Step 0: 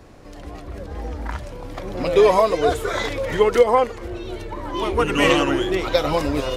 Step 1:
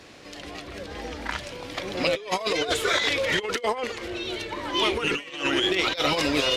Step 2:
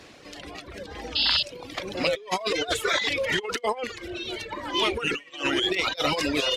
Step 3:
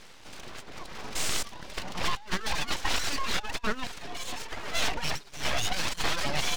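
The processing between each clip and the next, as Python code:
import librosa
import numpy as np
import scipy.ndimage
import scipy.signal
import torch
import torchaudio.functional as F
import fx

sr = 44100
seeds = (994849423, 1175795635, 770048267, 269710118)

y1 = fx.weighting(x, sr, curve='D')
y1 = fx.over_compress(y1, sr, threshold_db=-20.0, ratio=-0.5)
y1 = y1 * librosa.db_to_amplitude(-4.5)
y2 = fx.dereverb_blind(y1, sr, rt60_s=1.2)
y2 = fx.spec_paint(y2, sr, seeds[0], shape='noise', start_s=1.15, length_s=0.28, low_hz=2600.0, high_hz=5200.0, level_db=-23.0)
y3 = fx.cvsd(y2, sr, bps=32000)
y3 = np.abs(y3)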